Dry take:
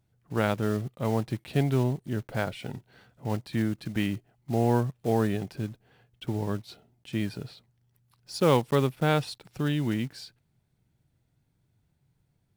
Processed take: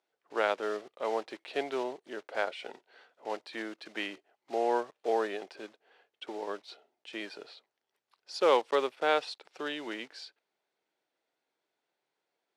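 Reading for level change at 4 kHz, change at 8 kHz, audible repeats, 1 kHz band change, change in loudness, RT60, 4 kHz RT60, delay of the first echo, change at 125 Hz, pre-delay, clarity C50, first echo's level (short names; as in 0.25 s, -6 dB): -1.0 dB, -7.5 dB, none, 0.0 dB, -4.5 dB, none, none, none, under -35 dB, none, none, none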